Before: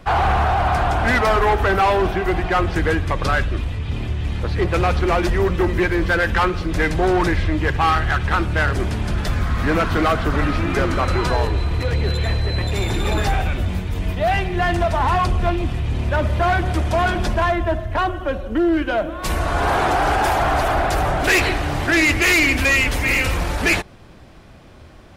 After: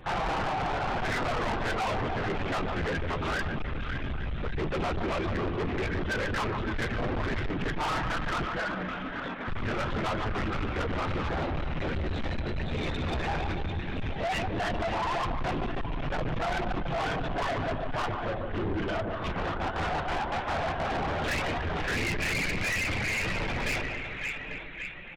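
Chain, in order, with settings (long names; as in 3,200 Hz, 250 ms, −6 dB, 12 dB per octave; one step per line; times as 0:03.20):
0:19.31–0:20.89: gate pattern ".xx.x.xxx" 189 BPM −12 dB
linear-prediction vocoder at 8 kHz whisper
0:08.45–0:09.48: Chebyshev high-pass with heavy ripple 180 Hz, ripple 6 dB
single-tap delay 843 ms −17 dB
on a send at −12 dB: convolution reverb RT60 1.1 s, pre-delay 49 ms
on the sum: flanger 0.12 Hz, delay 5.5 ms, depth 8.7 ms, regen −28%
reverb reduction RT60 0.54 s
echo with a time of its own for lows and highs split 1,400 Hz, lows 145 ms, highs 563 ms, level −8.5 dB
soft clipping −26 dBFS, distortion −7 dB
level −1 dB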